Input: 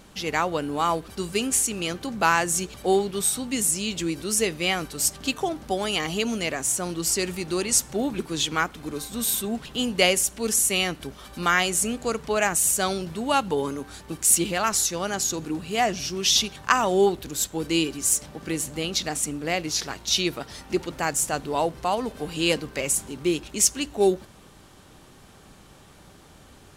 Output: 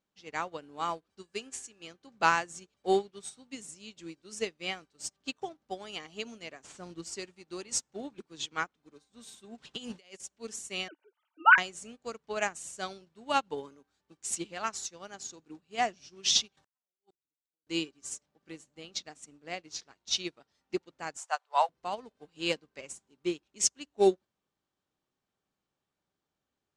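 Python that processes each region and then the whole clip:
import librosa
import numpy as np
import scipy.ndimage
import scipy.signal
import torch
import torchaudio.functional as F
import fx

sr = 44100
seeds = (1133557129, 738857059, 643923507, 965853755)

y = fx.peak_eq(x, sr, hz=150.0, db=-5.5, octaves=1.2, at=(1.22, 1.82), fade=0.02)
y = fx.dmg_tone(y, sr, hz=1700.0, level_db=-51.0, at=(1.22, 1.82), fade=0.02)
y = fx.chain(y, sr, fx.cvsd(bps=64000),
    fx.low_shelf(hz=290.0, db=7.5), at=(6.63, 7.04))
y = fx.chain(y, sr, fx.high_shelf(hz=2300.0, db=6.0),
    fx.over_compress(threshold_db=-28.0, ratio=-1.0), at=(9.58, 10.2))
y = fx.chain(y, sr, fx.sine_speech(),
    fx.small_body(hz=(280.0, 900.0, 1500.0), ring_ms=75, db=11), at=(10.88, 11.58))
y = fx.chain(y, sr, fx.high_shelf(hz=5300.0, db=10.0),
    fx.over_compress(threshold_db=-31.0, ratio=-1.0),
    fx.gate_flip(shuts_db=-23.0, range_db=-39), at=(16.57, 17.67))
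y = fx.chain(y, sr, fx.cheby2_highpass(hz=320.0, order=4, stop_db=40),
    fx.peak_eq(hz=980.0, db=6.5, octaves=1.7), at=(21.17, 21.69))
y = scipy.signal.sosfilt(scipy.signal.butter(4, 7700.0, 'lowpass', fs=sr, output='sos'), y)
y = fx.low_shelf(y, sr, hz=98.0, db=-12.0)
y = fx.upward_expand(y, sr, threshold_db=-39.0, expansion=2.5)
y = y * 10.0 ** (1.5 / 20.0)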